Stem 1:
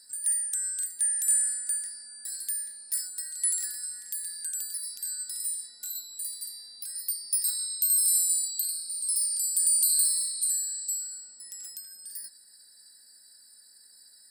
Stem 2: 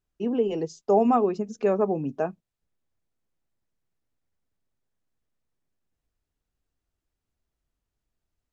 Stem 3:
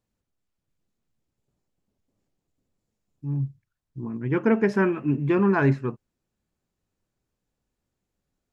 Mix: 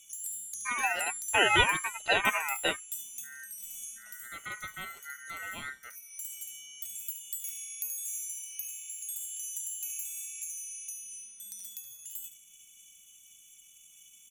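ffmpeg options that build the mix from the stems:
ffmpeg -i stem1.wav -i stem2.wav -i stem3.wav -filter_complex "[0:a]acompressor=threshold=-39dB:ratio=3,highshelf=frequency=11000:gain=11,volume=-2.5dB,asplit=2[link_01][link_02];[link_02]volume=-11dB[link_03];[1:a]lowpass=frequency=1700:width_type=q:width=11,aeval=exprs='val(0)*sin(2*PI*440*n/s+440*0.45/1.9*sin(2*PI*1.9*n/s))':channel_layout=same,adelay=450,volume=1dB[link_04];[2:a]highshelf=frequency=3000:width_type=q:width=3:gain=-7,volume=-18dB,asplit=2[link_05][link_06];[link_06]apad=whole_len=630896[link_07];[link_01][link_07]sidechaincompress=threshold=-54dB:ratio=8:attack=10:release=273[link_08];[link_03]aecho=0:1:73:1[link_09];[link_08][link_04][link_05][link_09]amix=inputs=4:normalize=0,highpass=110,equalizer=frequency=4400:width_type=o:width=0.77:gain=2,aeval=exprs='val(0)*sin(2*PI*1700*n/s)':channel_layout=same" out.wav

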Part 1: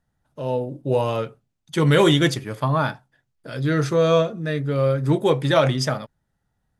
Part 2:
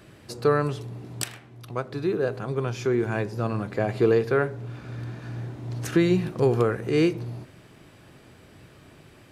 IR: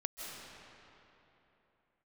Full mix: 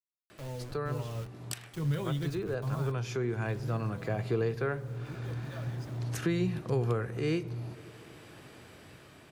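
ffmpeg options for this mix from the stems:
-filter_complex "[0:a]acrusher=bits=4:mix=0:aa=0.000001,volume=-11.5dB,afade=type=out:start_time=3.41:duration=0.4:silence=0.266073[link_01];[1:a]highpass=frequency=480:poles=1,dynaudnorm=framelen=210:gausssize=9:maxgain=7dB,adelay=300,volume=-1dB,asplit=2[link_02][link_03];[link_03]volume=-23dB[link_04];[2:a]atrim=start_sample=2205[link_05];[link_04][link_05]afir=irnorm=-1:irlink=0[link_06];[link_01][link_02][link_06]amix=inputs=3:normalize=0,lowshelf=frequency=140:gain=9,acrossover=split=140[link_07][link_08];[link_08]acompressor=threshold=-57dB:ratio=1.5[link_09];[link_07][link_09]amix=inputs=2:normalize=0"

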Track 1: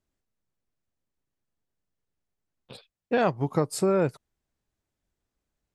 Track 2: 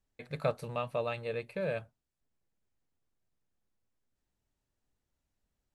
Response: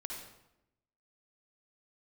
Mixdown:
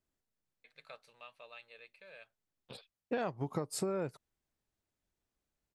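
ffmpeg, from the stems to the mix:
-filter_complex "[0:a]acompressor=threshold=-27dB:ratio=6,volume=-4dB[link_01];[1:a]bandpass=frequency=3500:width_type=q:width=0.77:csg=0,adelay=450,volume=-9dB[link_02];[link_01][link_02]amix=inputs=2:normalize=0,lowshelf=frequency=150:gain=-3"

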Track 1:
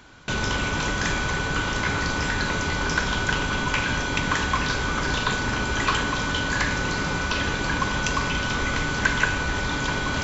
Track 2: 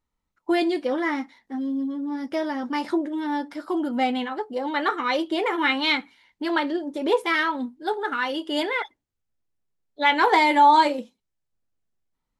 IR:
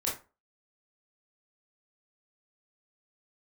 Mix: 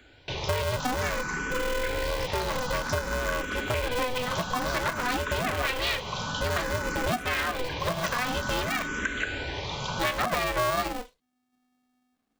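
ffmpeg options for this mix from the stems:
-filter_complex "[0:a]acrossover=split=130[link_01][link_02];[link_01]acompressor=threshold=-37dB:ratio=2[link_03];[link_03][link_02]amix=inputs=2:normalize=0,asplit=2[link_04][link_05];[link_05]afreqshift=0.54[link_06];[link_04][link_06]amix=inputs=2:normalize=1,volume=-2.5dB[link_07];[1:a]aeval=exprs='val(0)*sgn(sin(2*PI*250*n/s))':channel_layout=same,volume=1.5dB[link_08];[link_07][link_08]amix=inputs=2:normalize=0,acompressor=threshold=-25dB:ratio=6"

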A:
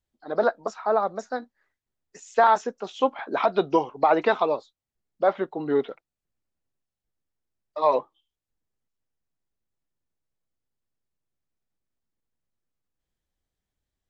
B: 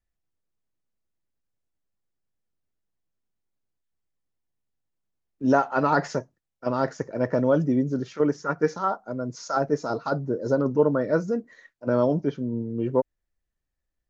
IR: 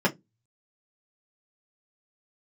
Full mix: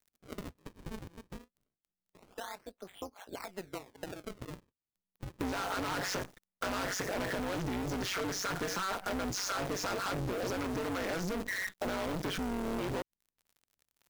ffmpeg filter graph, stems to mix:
-filter_complex "[0:a]alimiter=limit=-12.5dB:level=0:latency=1:release=440,acrossover=split=260[link_01][link_02];[link_02]acompressor=threshold=-28dB:ratio=5[link_03];[link_01][link_03]amix=inputs=2:normalize=0,acrusher=samples=37:mix=1:aa=0.000001:lfo=1:lforange=59.2:lforate=0.25,volume=-9.5dB[link_04];[1:a]acrossover=split=370|1300|2700[link_05][link_06][link_07][link_08];[link_05]acompressor=threshold=-28dB:ratio=4[link_09];[link_06]acompressor=threshold=-43dB:ratio=4[link_10];[link_07]acompressor=threshold=-40dB:ratio=4[link_11];[link_08]acompressor=threshold=-50dB:ratio=4[link_12];[link_09][link_10][link_11][link_12]amix=inputs=4:normalize=0,asplit=2[link_13][link_14];[link_14]highpass=frequency=720:poles=1,volume=38dB,asoftclip=type=tanh:threshold=-17.5dB[link_15];[link_13][link_15]amix=inputs=2:normalize=0,lowpass=frequency=5400:poles=1,volume=-6dB,acrusher=bits=6:dc=4:mix=0:aa=0.000001,volume=0dB[link_16];[link_04][link_16]amix=inputs=2:normalize=0,tremolo=f=190:d=0.824,acompressor=threshold=-33dB:ratio=5"

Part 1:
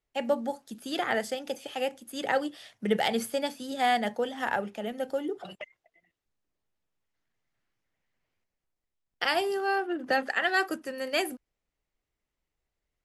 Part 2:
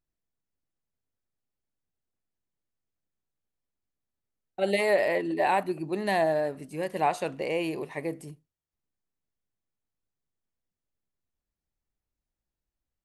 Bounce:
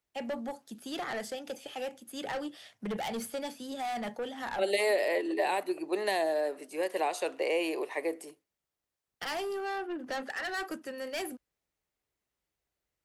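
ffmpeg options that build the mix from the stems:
ffmpeg -i stem1.wav -i stem2.wav -filter_complex "[0:a]highpass=55,acontrast=76,asoftclip=type=tanh:threshold=-21dB,volume=-9.5dB[link_01];[1:a]highpass=frequency=360:width=0.5412,highpass=frequency=360:width=1.3066,volume=2.5dB,asplit=2[link_02][link_03];[link_03]apad=whole_len=575229[link_04];[link_01][link_04]sidechaincompress=threshold=-31dB:ratio=8:attack=16:release=1060[link_05];[link_05][link_02]amix=inputs=2:normalize=0,acrossover=split=400|3000[link_06][link_07][link_08];[link_07]acompressor=threshold=-30dB:ratio=6[link_09];[link_06][link_09][link_08]amix=inputs=3:normalize=0" out.wav

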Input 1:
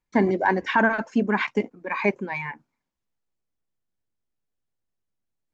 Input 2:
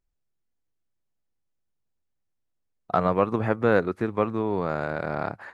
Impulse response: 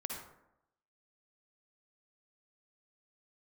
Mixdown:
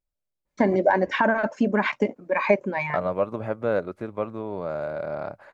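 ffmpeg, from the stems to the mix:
-filter_complex "[0:a]acompressor=threshold=-20dB:ratio=6,adynamicequalizer=threshold=0.0126:dfrequency=1900:dqfactor=0.7:tfrequency=1900:tqfactor=0.7:attack=5:release=100:ratio=0.375:range=2:mode=cutabove:tftype=highshelf,adelay=450,volume=2.5dB[link_01];[1:a]bandreject=frequency=1800:width=11,volume=-7dB[link_02];[link_01][link_02]amix=inputs=2:normalize=0,equalizer=frequency=590:width=6.1:gain=13"

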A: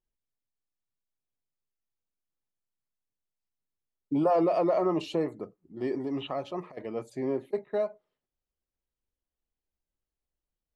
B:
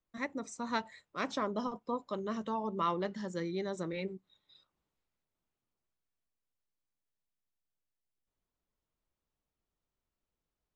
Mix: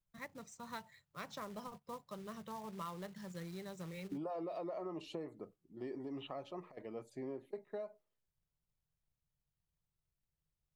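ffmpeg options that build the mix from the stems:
ffmpeg -i stem1.wav -i stem2.wav -filter_complex "[0:a]volume=-10dB,asplit=2[link_01][link_02];[1:a]lowshelf=frequency=200:width_type=q:width=3:gain=10,acrossover=split=230|3000[link_03][link_04][link_05];[link_03]acompressor=threshold=-54dB:ratio=2[link_06];[link_06][link_04][link_05]amix=inputs=3:normalize=0,acrusher=bits=3:mode=log:mix=0:aa=0.000001,volume=-3dB[link_07];[link_02]apad=whole_len=474327[link_08];[link_07][link_08]sidechaingate=range=-6dB:threshold=-59dB:ratio=16:detection=peak[link_09];[link_01][link_09]amix=inputs=2:normalize=0,acompressor=threshold=-40dB:ratio=5" out.wav

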